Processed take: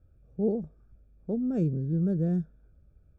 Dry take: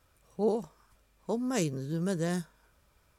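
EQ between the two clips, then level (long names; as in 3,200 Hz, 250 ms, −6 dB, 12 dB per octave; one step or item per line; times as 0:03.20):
moving average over 44 samples
low-shelf EQ 200 Hz +11.5 dB
0.0 dB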